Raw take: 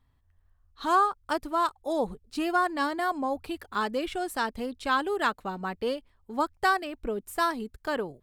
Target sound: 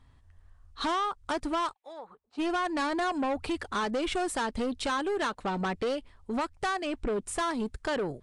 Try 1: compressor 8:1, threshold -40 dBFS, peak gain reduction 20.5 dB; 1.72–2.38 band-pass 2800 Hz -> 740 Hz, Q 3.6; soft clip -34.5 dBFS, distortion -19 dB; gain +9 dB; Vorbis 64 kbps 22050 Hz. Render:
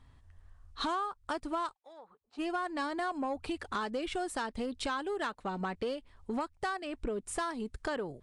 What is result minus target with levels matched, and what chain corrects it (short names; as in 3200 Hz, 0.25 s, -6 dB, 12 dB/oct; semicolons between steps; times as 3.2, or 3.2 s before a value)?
compressor: peak gain reduction +9 dB
compressor 8:1, threshold -30 dBFS, peak gain reduction 11.5 dB; 1.72–2.38 band-pass 2800 Hz -> 740 Hz, Q 3.6; soft clip -34.5 dBFS, distortion -10 dB; gain +9 dB; Vorbis 64 kbps 22050 Hz